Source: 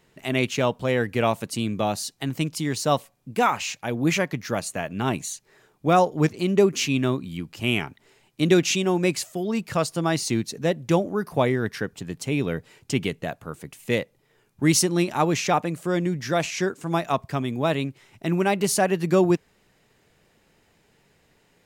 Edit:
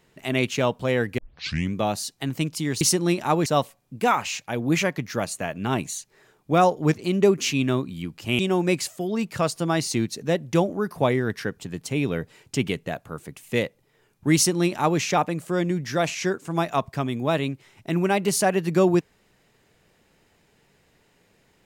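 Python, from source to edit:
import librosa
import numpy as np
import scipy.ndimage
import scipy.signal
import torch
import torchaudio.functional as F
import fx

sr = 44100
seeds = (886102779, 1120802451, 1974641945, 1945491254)

y = fx.edit(x, sr, fx.tape_start(start_s=1.18, length_s=0.56),
    fx.cut(start_s=7.74, length_s=1.01),
    fx.duplicate(start_s=14.71, length_s=0.65, to_s=2.81), tone=tone)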